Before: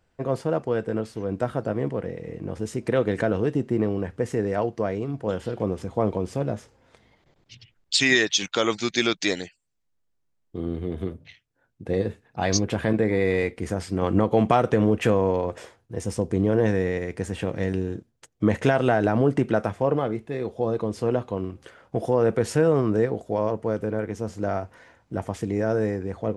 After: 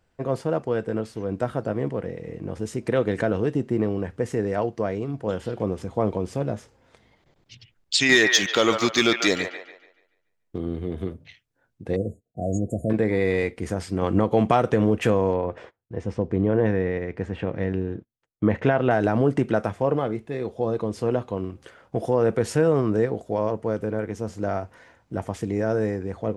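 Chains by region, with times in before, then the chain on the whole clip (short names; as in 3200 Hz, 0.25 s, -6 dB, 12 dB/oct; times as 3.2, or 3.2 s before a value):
8.09–10.58 sample leveller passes 1 + band-limited delay 0.144 s, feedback 36%, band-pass 1200 Hz, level -3.5 dB
11.96–12.9 expander -50 dBFS + brick-wall FIR band-stop 730–6600 Hz + dynamic EQ 410 Hz, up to -5 dB, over -38 dBFS, Q 2.8
15.33–18.91 LPF 2600 Hz + gate -49 dBFS, range -21 dB
whole clip: dry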